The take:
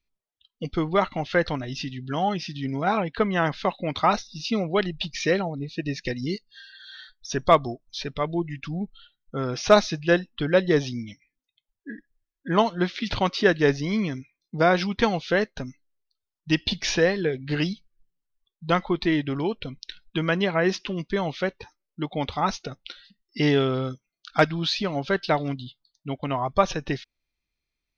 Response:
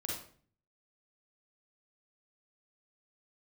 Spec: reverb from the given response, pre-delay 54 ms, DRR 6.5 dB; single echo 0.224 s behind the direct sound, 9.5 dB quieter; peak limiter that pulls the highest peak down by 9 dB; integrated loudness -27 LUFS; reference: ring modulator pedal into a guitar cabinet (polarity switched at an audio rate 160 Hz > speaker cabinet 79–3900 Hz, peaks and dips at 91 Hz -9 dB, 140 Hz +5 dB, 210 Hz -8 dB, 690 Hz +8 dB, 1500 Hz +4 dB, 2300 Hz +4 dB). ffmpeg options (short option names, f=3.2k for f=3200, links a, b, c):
-filter_complex "[0:a]alimiter=limit=-14.5dB:level=0:latency=1,aecho=1:1:224:0.335,asplit=2[a][b];[1:a]atrim=start_sample=2205,adelay=54[c];[b][c]afir=irnorm=-1:irlink=0,volume=-7.5dB[d];[a][d]amix=inputs=2:normalize=0,aeval=exprs='val(0)*sgn(sin(2*PI*160*n/s))':c=same,highpass=79,equalizer=f=91:t=q:w=4:g=-9,equalizer=f=140:t=q:w=4:g=5,equalizer=f=210:t=q:w=4:g=-8,equalizer=f=690:t=q:w=4:g=8,equalizer=f=1.5k:t=q:w=4:g=4,equalizer=f=2.3k:t=q:w=4:g=4,lowpass=f=3.9k:w=0.5412,lowpass=f=3.9k:w=1.3066,volume=-2.5dB"